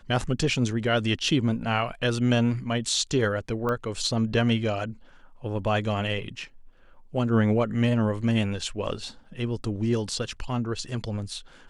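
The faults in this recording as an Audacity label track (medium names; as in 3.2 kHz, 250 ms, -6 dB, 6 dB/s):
3.690000	3.690000	pop -17 dBFS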